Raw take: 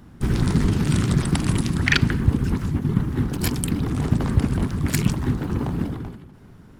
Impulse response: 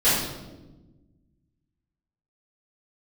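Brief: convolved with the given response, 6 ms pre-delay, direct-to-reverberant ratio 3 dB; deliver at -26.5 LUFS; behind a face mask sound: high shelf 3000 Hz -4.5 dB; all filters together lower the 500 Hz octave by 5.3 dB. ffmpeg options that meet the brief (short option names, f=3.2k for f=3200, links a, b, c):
-filter_complex "[0:a]equalizer=f=500:t=o:g=-8,asplit=2[a][b];[1:a]atrim=start_sample=2205,adelay=6[c];[b][c]afir=irnorm=-1:irlink=0,volume=-20.5dB[d];[a][d]amix=inputs=2:normalize=0,highshelf=f=3k:g=-4.5,volume=-6.5dB"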